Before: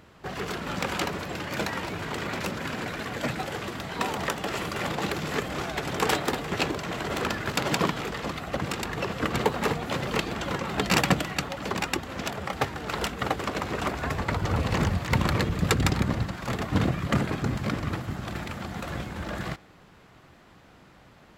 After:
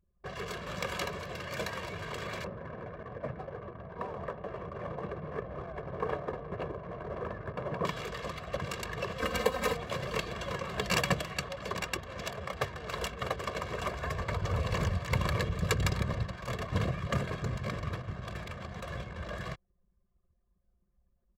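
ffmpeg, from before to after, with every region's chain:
-filter_complex "[0:a]asettb=1/sr,asplit=3[s0][s1][s2];[s0]atrim=end=2.444[s3];[s1]atrim=start=2.44:end=7.85,asetpts=PTS-STARTPTS,afade=t=in:d=0.004:c=qsin,afade=t=out:st=5.406:d=0.004:c=qsin,lowpass=1100,aeval=exprs='sgn(val(0))*max(abs(val(0))-0.00282,0)':c=same[s4];[s2]atrim=start=7.846[s5];[s3][s4]acrossfade=d=0.004:c1=hsin:c2=qsin[s6];[s6][s5]acrossfade=d=0.004:c1=qsin:c2=hsin,asettb=1/sr,asplit=3[s7][s8][s9];[s7]atrim=end=9.184[s10];[s8]atrim=start=9.18:end=9.77,asetpts=PTS-STARTPTS,afade=t=in:d=0.004:c=qsin,afade=t=out:st=0.586:d=0.004:c=qsin,highshelf=f=8000:g=4.5,aecho=1:1:3.9:0.81,atrim=end_sample=26019[s11];[s9]atrim=start=9.766[s12];[s10][s11]acrossfade=d=0.004:c1=hsin:c2=qsin[s13];[s13][s12]acrossfade=d=0.004:c1=qsin:c2=hsin,anlmdn=0.251,aecho=1:1:1.8:0.66,volume=0.422"

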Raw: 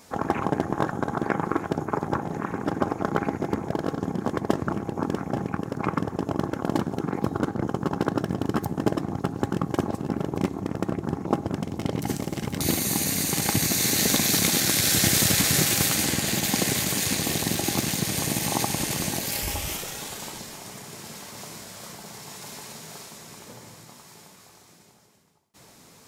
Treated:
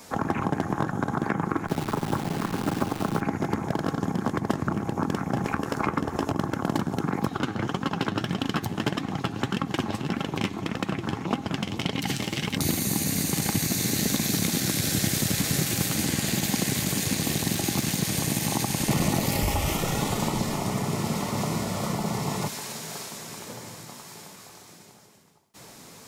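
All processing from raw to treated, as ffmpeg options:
-filter_complex "[0:a]asettb=1/sr,asplit=3[s0][s1][s2];[s0]atrim=end=1.674[s3];[s1]atrim=start=1.67:end=3.21,asetpts=PTS-STARTPTS,afade=t=in:d=0.004:c=qsin,afade=t=out:st=1.536:d=0.004:c=qsin,lowpass=f=1100:p=1,acrusher=bits=7:dc=4:mix=0:aa=0.000001[s4];[s2]atrim=start=3.206[s5];[s3][s4]acrossfade=d=0.004:c1=hsin:c2=qsin[s6];[s6][s5]acrossfade=d=0.004:c1=qsin:c2=hsin,asettb=1/sr,asplit=3[s7][s8][s9];[s7]atrim=end=5.444[s10];[s8]atrim=start=5.44:end=6.31,asetpts=PTS-STARTPTS,afade=t=in:d=0.004:c=qsin,afade=t=out:st=0.866:d=0.004:c=qsin,equalizer=f=150:w=0.68:g=-12.5,acontrast=75,asplit=2[s11][s12];[s12]adelay=14,volume=0.282[s13];[s11][s13]amix=inputs=2:normalize=0,atrim=end_sample=38367[s14];[s9]atrim=start=6.306[s15];[s10][s14]acrossfade=d=0.004:c1=hsin:c2=qsin[s16];[s16][s15]acrossfade=d=0.004:c1=qsin:c2=hsin,asettb=1/sr,asplit=3[s17][s18][s19];[s17]atrim=end=7.274[s20];[s18]atrim=start=7.27:end=12.56,asetpts=PTS-STARTPTS,afade=t=in:d=0.004:c=qsin,afade=t=out:st=5.286:d=0.004:c=qsin,flanger=delay=3.7:depth=6.2:regen=47:speed=1.7:shape=sinusoidal,equalizer=f=3000:w=0.79:g=13.5[s21];[s19]atrim=start=12.556[s22];[s20][s21]acrossfade=d=0.004:c1=hsin:c2=qsin[s23];[s23][s22]acrossfade=d=0.004:c1=qsin:c2=hsin,asettb=1/sr,asplit=3[s24][s25][s26];[s24]atrim=end=18.884[s27];[s25]atrim=start=18.88:end=22.48,asetpts=PTS-STARTPTS,afade=t=in:d=0.004:c=qsin,afade=t=out:st=3.596:d=0.004:c=qsin,tiltshelf=f=1400:g=8,aeval=exprs='0.316*sin(PI/2*1.41*val(0)/0.316)':c=same,asuperstop=centerf=1600:order=4:qfactor=6.7[s28];[s26]atrim=start=22.476[s29];[s27][s28]acrossfade=d=0.004:c1=hsin:c2=qsin[s30];[s30][s29]acrossfade=d=0.004:c1=qsin:c2=hsin,acrossover=split=290|710[s31][s32][s33];[s31]acompressor=threshold=0.0398:ratio=4[s34];[s32]acompressor=threshold=0.00631:ratio=4[s35];[s33]acompressor=threshold=0.0224:ratio=4[s36];[s34][s35][s36]amix=inputs=3:normalize=0,equalizer=f=61:t=o:w=1.1:g=-4.5,acontrast=25"

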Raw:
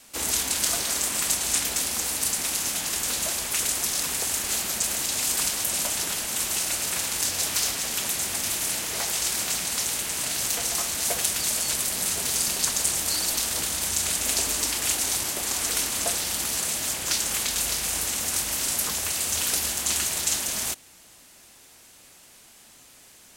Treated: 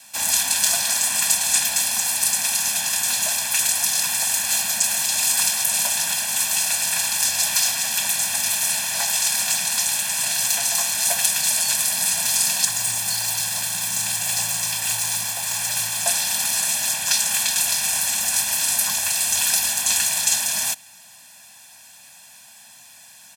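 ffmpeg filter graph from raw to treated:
-filter_complex "[0:a]asettb=1/sr,asplit=3[s0][s1][s2];[s0]atrim=end=12.654[s3];[s1]atrim=start=12.65:end=16.06,asetpts=PTS-STARTPTS,afade=t=in:d=0.004:c=qsin,afade=t=out:st=3.406:d=0.004:c=qsin,aeval=exprs='(tanh(11.2*val(0)+0.55)-tanh(0.55))/11.2':c=same,afreqshift=110[s4];[s2]atrim=start=16.056[s5];[s3][s4]acrossfade=d=0.004:c1=hsin:c2=qsin[s6];[s6][s5]acrossfade=d=0.004:c1=qsin:c2=hsin,highpass=180,equalizer=f=350:w=1.4:g=-15,aecho=1:1:1.2:0.96,volume=1.41"

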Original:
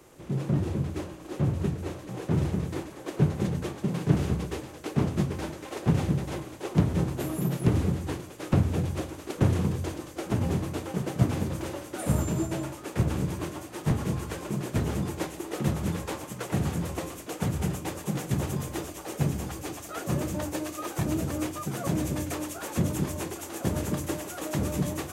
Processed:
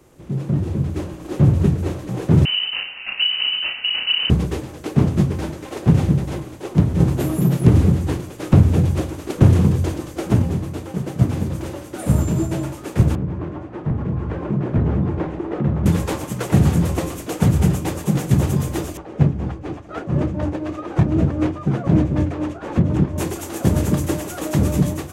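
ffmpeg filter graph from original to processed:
-filter_complex "[0:a]asettb=1/sr,asplit=3[s0][s1][s2];[s0]atrim=end=2.454[s3];[s1]atrim=start=2.45:end=4.3,asetpts=PTS-STARTPTS,afade=t=in:d=0.004:c=qsin,afade=t=out:st=1.846:d=0.004:c=qsin,asplit=2[s4][s5];[s5]adelay=32,volume=0.708[s6];[s4][s6]amix=inputs=2:normalize=0,atrim=end_sample=81585,acompressor=threshold=0.0708:ratio=2.5:attack=3.2:release=140:knee=1:detection=peak,lowpass=f=2600:t=q:w=0.5098,lowpass=f=2600:t=q:w=0.6013,lowpass=f=2600:t=q:w=0.9,lowpass=f=2600:t=q:w=2.563,afreqshift=-3100[s7];[s2]atrim=start=4.296[s8];[s3][s7]acrossfade=d=0.004:c1=hsin:c2=qsin[s9];[s9][s8]acrossfade=d=0.004:c1=qsin:c2=hsin,asettb=1/sr,asplit=3[s10][s11][s12];[s10]atrim=end=7.004[s13];[s11]atrim=start=7:end=10.42,asetpts=PTS-STARTPTS,afade=t=in:d=0.004:c=qsin,afade=t=out:st=3.416:d=0.004:c=qsin,acontrast=56,asoftclip=type=hard:threshold=0.376[s14];[s12]atrim=start=10.416[s15];[s13][s14]acrossfade=d=0.004:c1=hsin:c2=qsin[s16];[s16][s15]acrossfade=d=0.004:c1=qsin:c2=hsin,asettb=1/sr,asplit=3[s17][s18][s19];[s17]atrim=end=13.154[s20];[s18]atrim=start=13.15:end=15.86,asetpts=PTS-STARTPTS,afade=t=in:d=0.004:c=qsin,afade=t=out:st=2.706:d=0.004:c=qsin,lowpass=1600,acompressor=threshold=0.0224:ratio=2:attack=3.2:release=140:knee=1:detection=peak[s21];[s19]atrim=start=15.856[s22];[s20][s21]acrossfade=d=0.004:c1=hsin:c2=qsin[s23];[s23][s22]acrossfade=d=0.004:c1=qsin:c2=hsin,asettb=1/sr,asplit=3[s24][s25][s26];[s24]atrim=end=18.974[s27];[s25]atrim=start=18.97:end=23.18,asetpts=PTS-STARTPTS,afade=t=in:d=0.004:c=qsin,afade=t=out:st=4.206:d=0.004:c=qsin,tremolo=f=4:d=0.56,adynamicsmooth=sensitivity=2.5:basefreq=2100[s28];[s26]atrim=start=23.176[s29];[s27][s28]acrossfade=d=0.004:c1=hsin:c2=qsin[s30];[s30][s29]acrossfade=d=0.004:c1=qsin:c2=hsin,lowshelf=f=310:g=7.5,dynaudnorm=f=670:g=3:m=3.76,volume=0.891"

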